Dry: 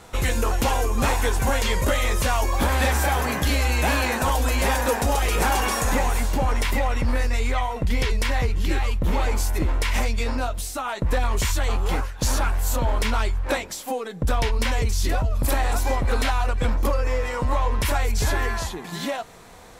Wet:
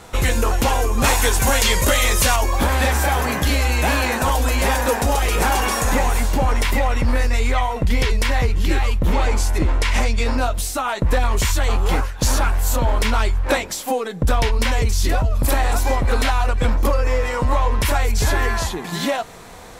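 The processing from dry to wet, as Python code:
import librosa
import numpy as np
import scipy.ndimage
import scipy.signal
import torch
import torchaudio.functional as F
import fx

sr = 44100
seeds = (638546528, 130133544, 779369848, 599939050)

p1 = fx.lowpass(x, sr, hz=10000.0, slope=12, at=(9.13, 10.25))
p2 = fx.rider(p1, sr, range_db=4, speed_s=0.5)
p3 = p1 + (p2 * librosa.db_to_amplitude(1.0))
p4 = fx.high_shelf(p3, sr, hz=2500.0, db=8.5, at=(1.04, 2.36))
y = p4 * librosa.db_to_amplitude(-2.5)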